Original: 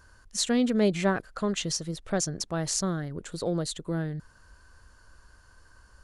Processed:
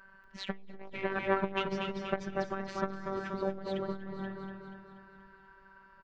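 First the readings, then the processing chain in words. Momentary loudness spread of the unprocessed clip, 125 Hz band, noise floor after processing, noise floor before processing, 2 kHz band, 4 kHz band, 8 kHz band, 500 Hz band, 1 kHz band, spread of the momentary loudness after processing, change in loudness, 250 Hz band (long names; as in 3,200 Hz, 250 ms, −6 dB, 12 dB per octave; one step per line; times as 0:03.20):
10 LU, −10.5 dB, −59 dBFS, −58 dBFS, −1.5 dB, −11.0 dB, below −25 dB, −4.5 dB, 0.0 dB, 18 LU, −7.5 dB, −10.0 dB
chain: sub-octave generator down 2 octaves, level 0 dB
low-pass filter 2,300 Hz 24 dB per octave
spectral tilt +2.5 dB per octave
phases set to zero 193 Hz
on a send: repeating echo 240 ms, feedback 53%, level −5 dB
on the sum: reverb whose tail is shaped and stops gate 330 ms rising, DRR 11.5 dB
saturating transformer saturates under 740 Hz
level +4 dB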